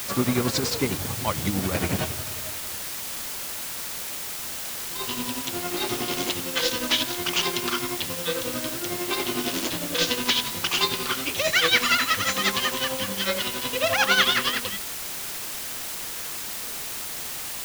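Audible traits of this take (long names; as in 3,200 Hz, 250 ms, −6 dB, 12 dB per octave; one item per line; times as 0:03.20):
tremolo triangle 11 Hz, depth 75%
a quantiser's noise floor 6 bits, dither triangular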